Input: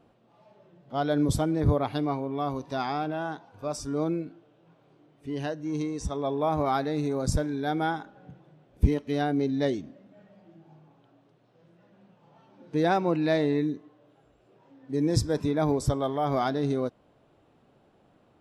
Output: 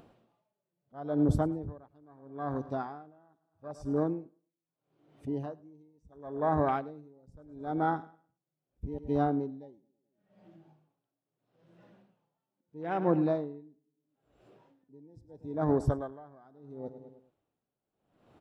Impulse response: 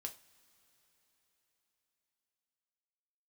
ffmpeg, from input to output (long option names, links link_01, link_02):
-af "afwtdn=0.0282,acompressor=mode=upward:threshold=-43dB:ratio=2.5,aecho=1:1:105|210|315|420:0.141|0.0706|0.0353|0.0177,aeval=exprs='val(0)*pow(10,-31*(0.5-0.5*cos(2*PI*0.76*n/s))/20)':channel_layout=same"